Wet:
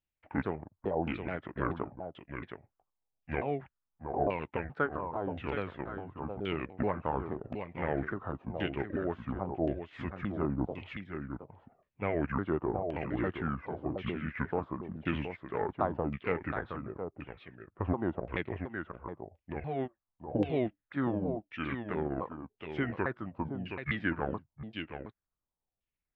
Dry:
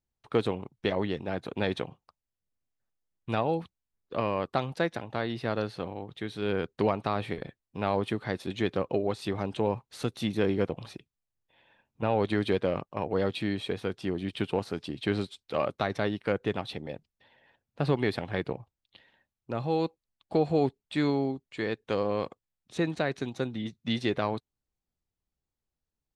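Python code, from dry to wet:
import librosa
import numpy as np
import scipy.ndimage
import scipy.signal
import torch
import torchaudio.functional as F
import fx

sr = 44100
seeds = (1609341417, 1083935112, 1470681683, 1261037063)

y = fx.pitch_ramps(x, sr, semitones=-9.0, every_ms=427)
y = y + 10.0 ** (-7.5 / 20.0) * np.pad(y, (int(719 * sr / 1000.0), 0))[:len(y)]
y = fx.filter_lfo_lowpass(y, sr, shape='saw_down', hz=0.93, low_hz=680.0, high_hz=2900.0, q=3.1)
y = F.gain(torch.from_numpy(y), -5.0).numpy()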